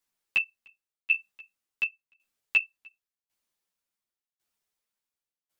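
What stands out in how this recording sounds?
tremolo saw down 0.91 Hz, depth 95%; a shimmering, thickened sound

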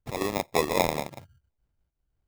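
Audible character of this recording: aliases and images of a low sample rate 1500 Hz, jitter 0%; noise-modulated level

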